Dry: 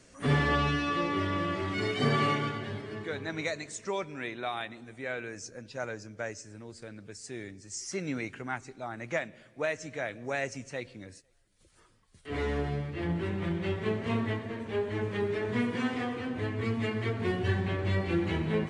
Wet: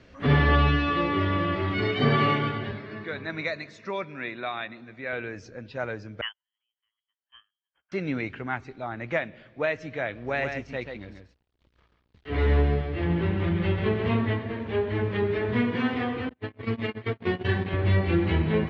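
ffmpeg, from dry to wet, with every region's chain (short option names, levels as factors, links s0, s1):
-filter_complex "[0:a]asettb=1/sr,asplit=3[s0][s1][s2];[s0]atrim=end=2.714[s3];[s1]atrim=start=2.71:end=5.13,asetpts=PTS-STARTPTS,afade=t=in:d=0.004:c=qsin,afade=t=out:st=2.416:d=0.004:c=qsin,highpass=150,equalizer=f=290:t=q:w=4:g=-4,equalizer=f=430:t=q:w=4:g=-6,equalizer=f=820:t=q:w=4:g=-6,lowpass=f=7200:w=0.5412,lowpass=f=7200:w=1.3066,bandreject=f=3100:w=5.3[s4];[s2]atrim=start=5.126[s5];[s3][s4]acrossfade=d=0.004:c1=hsin:c2=qsin[s6];[s6][s5]acrossfade=d=0.004:c1=qsin:c2=hsin,asettb=1/sr,asplit=3[s7][s8][s9];[s7]atrim=end=6.214[s10];[s8]atrim=start=6.21:end=7.92,asetpts=PTS-STARTPTS,afade=t=in:d=0.004:c=qsin,afade=t=out:st=1.706:d=0.004:c=qsin,agate=range=0.0112:threshold=0.0141:ratio=16:release=100:detection=peak,highpass=410,lowpass=f=3000:t=q:w=0.5098,lowpass=f=3000:t=q:w=0.6013,lowpass=f=3000:t=q:w=0.9,lowpass=f=3000:t=q:w=2.563,afreqshift=-3500[s11];[s9]atrim=start=7.916[s12];[s10][s11]acrossfade=d=0.004:c1=hsin:c2=qsin[s13];[s13][s12]acrossfade=d=0.004:c1=qsin:c2=hsin,asettb=1/sr,asplit=3[s14][s15][s16];[s14]atrim=end=10.144[s17];[s15]atrim=start=10.14:end=14.09,asetpts=PTS-STARTPTS,afade=t=in:d=0.004:c=qsin,afade=t=out:st=3.946:d=0.004:c=qsin,aeval=exprs='val(0)+0.000708*(sin(2*PI*60*n/s)+sin(2*PI*2*60*n/s)/2+sin(2*PI*3*60*n/s)/3+sin(2*PI*4*60*n/s)/4+sin(2*PI*5*60*n/s)/5)':c=same,aeval=exprs='sgn(val(0))*max(abs(val(0))-0.00119,0)':c=same,aecho=1:1:136:0.501,atrim=end_sample=174195[s18];[s16]atrim=start=14.086[s19];[s17][s18]acrossfade=d=0.004:c1=hsin:c2=qsin[s20];[s20][s19]acrossfade=d=0.004:c1=qsin:c2=hsin,asettb=1/sr,asplit=3[s21][s22][s23];[s21]atrim=end=16.294[s24];[s22]atrim=start=16.29:end=17.74,asetpts=PTS-STARTPTS,afade=t=in:d=0.004:c=qsin,afade=t=out:st=1.446:d=0.004:c=qsin,agate=range=0.00631:threshold=0.0282:ratio=16:release=100:detection=peak,highpass=120,highshelf=f=3900:g=4.5[s25];[s23]atrim=start=17.736[s26];[s24][s25]acrossfade=d=0.004:c1=hsin:c2=qsin[s27];[s27][s26]acrossfade=d=0.004:c1=qsin:c2=hsin,lowpass=f=4000:w=0.5412,lowpass=f=4000:w=1.3066,equalizer=f=69:w=2.1:g=9.5,volume=1.68"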